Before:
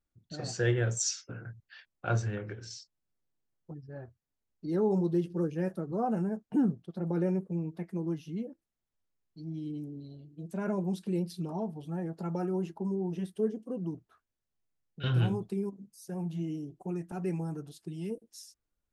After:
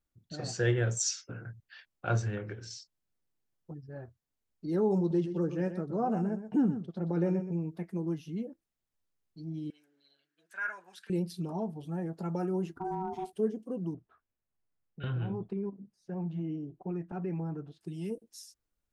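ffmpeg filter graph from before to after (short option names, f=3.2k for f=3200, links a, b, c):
-filter_complex "[0:a]asettb=1/sr,asplit=3[a][b][c];[a]atrim=end=4.984[d];[b]atrim=start=4.98:end=7.6,asetpts=PTS-STARTPTS,afade=t=in:d=0.004:c=qsin,afade=t=out:st=2.616:d=0.004:c=qsin,lowpass=f=7.8k:w=0.5412,lowpass=f=7.8k:w=1.3066,aecho=1:1:123:0.299,atrim=end_sample=115542[e];[c]atrim=start=7.596[f];[d][e]acrossfade=d=0.004:c1=hsin:c2=qsin[g];[g][f]acrossfade=d=0.004:c1=qsin:c2=hsin,asettb=1/sr,asplit=3[h][i][j];[h]atrim=end=9.704[k];[i]atrim=start=9.7:end=11.1,asetpts=PTS-STARTPTS,afade=t=in:d=0.004:c=qsin,afade=t=out:st=1.396:d=0.004:c=qsin,highpass=f=1.6k:t=q:w=7,highshelf=f=5.3k:g=-6.5[l];[j]atrim=start=11.096[m];[k][l]acrossfade=d=0.004:c1=hsin:c2=qsin[n];[n][m]acrossfade=d=0.004:c1=qsin:c2=hsin,asettb=1/sr,asplit=3[o][p][q];[o]atrim=end=12.764[r];[p]atrim=start=12.76:end=13.33,asetpts=PTS-STARTPTS,afade=t=in:d=0.004:c=qsin,afade=t=out:st=0.566:d=0.004:c=qsin,asoftclip=type=hard:threshold=-27dB,bandreject=f=3.6k:w=15,aeval=exprs='val(0)*sin(2*PI*560*n/s)':c=same[s];[q]atrim=start=13.326[t];[r][s]acrossfade=d=0.004:c1=hsin:c2=qsin[u];[u][t]acrossfade=d=0.004:c1=qsin:c2=hsin,asettb=1/sr,asplit=3[v][w][x];[v]atrim=end=13.944[y];[w]atrim=start=13.94:end=17.81,asetpts=PTS-STARTPTS,afade=t=in:d=0.004:c=qsin,afade=t=out:st=3.866:d=0.004:c=qsin,lowpass=2.2k,acompressor=threshold=-30dB:ratio=5:attack=3.2:release=140:knee=1:detection=peak[z];[x]atrim=start=17.806[aa];[y][z]acrossfade=d=0.004:c1=hsin:c2=qsin[ab];[ab][aa]acrossfade=d=0.004:c1=qsin:c2=hsin"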